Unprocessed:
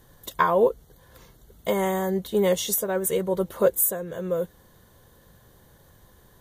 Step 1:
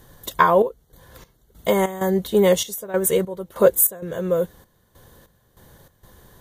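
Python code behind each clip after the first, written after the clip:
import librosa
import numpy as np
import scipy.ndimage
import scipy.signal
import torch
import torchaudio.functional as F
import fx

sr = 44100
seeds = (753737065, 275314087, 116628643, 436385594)

y = fx.step_gate(x, sr, bpm=97, pattern='xxxx..xx..xx.', floor_db=-12.0, edge_ms=4.5)
y = y * librosa.db_to_amplitude(5.5)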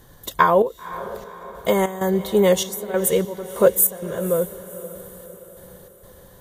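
y = fx.echo_diffused(x, sr, ms=523, feedback_pct=52, wet_db=-15)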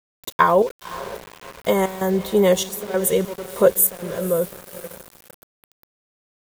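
y = np.where(np.abs(x) >= 10.0 ** (-33.0 / 20.0), x, 0.0)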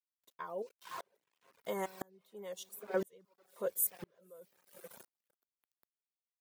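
y = scipy.signal.sosfilt(scipy.signal.bessel(2, 220.0, 'highpass', norm='mag', fs=sr, output='sos'), x)
y = fx.dereverb_blind(y, sr, rt60_s=1.1)
y = fx.tremolo_decay(y, sr, direction='swelling', hz=0.99, depth_db=37)
y = y * librosa.db_to_amplitude(-7.5)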